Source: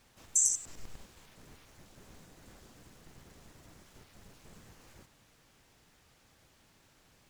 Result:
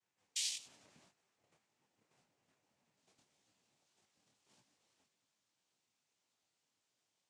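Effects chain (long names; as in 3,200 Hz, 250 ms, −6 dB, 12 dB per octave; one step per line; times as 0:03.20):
noise gate −52 dBFS, range −12 dB
bass and treble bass −6 dB, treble −1 dB, from 0:02.96 treble +9 dB
cochlear-implant simulation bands 4
micro pitch shift up and down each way 60 cents
level −6 dB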